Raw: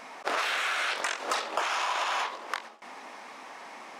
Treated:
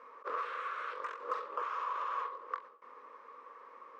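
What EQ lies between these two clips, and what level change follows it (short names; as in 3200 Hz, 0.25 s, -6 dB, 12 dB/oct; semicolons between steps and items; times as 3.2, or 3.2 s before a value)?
double band-pass 740 Hz, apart 1.2 oct; 0.0 dB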